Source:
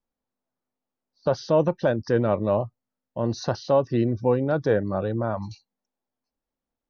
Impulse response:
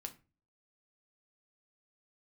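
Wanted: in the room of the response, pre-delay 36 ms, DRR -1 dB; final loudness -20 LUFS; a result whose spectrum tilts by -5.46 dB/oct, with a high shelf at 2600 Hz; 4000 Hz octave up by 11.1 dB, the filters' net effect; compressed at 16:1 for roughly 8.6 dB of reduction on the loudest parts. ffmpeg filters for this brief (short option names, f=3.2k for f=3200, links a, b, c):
-filter_complex "[0:a]highshelf=f=2.6k:g=6.5,equalizer=f=4k:t=o:g=7.5,acompressor=threshold=-23dB:ratio=16,asplit=2[a][b];[1:a]atrim=start_sample=2205,adelay=36[c];[b][c]afir=irnorm=-1:irlink=0,volume=4.5dB[d];[a][d]amix=inputs=2:normalize=0,volume=6dB"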